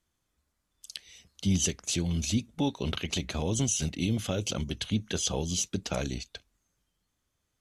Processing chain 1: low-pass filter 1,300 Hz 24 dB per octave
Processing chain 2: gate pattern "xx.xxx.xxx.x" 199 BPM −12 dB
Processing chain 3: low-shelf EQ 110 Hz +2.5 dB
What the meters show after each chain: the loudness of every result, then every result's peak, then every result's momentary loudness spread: −33.0, −31.5, −30.0 LKFS; −16.0, −15.0, −15.0 dBFS; 6, 15, 14 LU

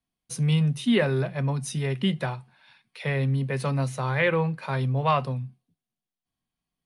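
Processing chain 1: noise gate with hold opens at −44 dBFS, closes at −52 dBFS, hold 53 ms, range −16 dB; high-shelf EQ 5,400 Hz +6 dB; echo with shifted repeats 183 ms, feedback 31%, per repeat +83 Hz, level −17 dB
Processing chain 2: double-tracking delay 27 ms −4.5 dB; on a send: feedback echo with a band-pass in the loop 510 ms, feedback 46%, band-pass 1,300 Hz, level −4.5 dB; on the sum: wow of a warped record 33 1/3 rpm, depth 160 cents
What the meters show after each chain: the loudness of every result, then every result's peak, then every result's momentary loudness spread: −25.5, −25.0 LKFS; −10.0, −8.0 dBFS; 10, 16 LU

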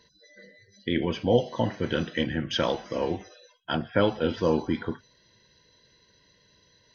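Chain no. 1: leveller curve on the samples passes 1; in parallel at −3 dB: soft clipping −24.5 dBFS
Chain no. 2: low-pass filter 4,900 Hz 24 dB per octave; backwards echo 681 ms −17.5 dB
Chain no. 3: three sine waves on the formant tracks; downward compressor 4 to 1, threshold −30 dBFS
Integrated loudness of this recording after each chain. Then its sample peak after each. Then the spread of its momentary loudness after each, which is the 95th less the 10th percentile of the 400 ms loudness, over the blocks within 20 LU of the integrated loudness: −22.0, −27.5, −34.5 LKFS; −6.5, −7.5, −21.0 dBFS; 9, 17, 13 LU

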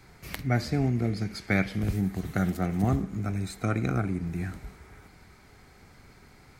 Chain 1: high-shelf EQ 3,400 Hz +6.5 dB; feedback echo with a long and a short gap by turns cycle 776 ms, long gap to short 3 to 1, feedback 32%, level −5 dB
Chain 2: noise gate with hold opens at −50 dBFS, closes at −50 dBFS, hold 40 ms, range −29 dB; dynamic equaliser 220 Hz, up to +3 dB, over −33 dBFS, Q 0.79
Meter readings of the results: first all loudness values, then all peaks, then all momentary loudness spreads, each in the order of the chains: −28.0, −27.0 LKFS; −10.0, −10.0 dBFS; 17, 8 LU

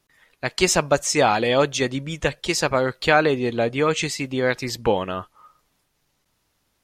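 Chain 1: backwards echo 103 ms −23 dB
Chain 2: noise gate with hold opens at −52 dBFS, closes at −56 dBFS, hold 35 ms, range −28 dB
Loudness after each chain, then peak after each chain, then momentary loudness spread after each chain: −21.5, −21.5 LKFS; −2.5, −2.5 dBFS; 7, 7 LU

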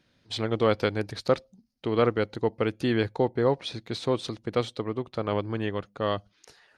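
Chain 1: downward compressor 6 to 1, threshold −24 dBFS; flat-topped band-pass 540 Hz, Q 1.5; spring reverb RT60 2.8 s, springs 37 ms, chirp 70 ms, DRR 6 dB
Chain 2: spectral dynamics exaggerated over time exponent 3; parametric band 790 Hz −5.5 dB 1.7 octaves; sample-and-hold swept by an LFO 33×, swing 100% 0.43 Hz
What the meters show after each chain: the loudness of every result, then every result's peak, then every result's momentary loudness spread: −34.5, −36.5 LKFS; −17.5, −18.0 dBFS; 7, 14 LU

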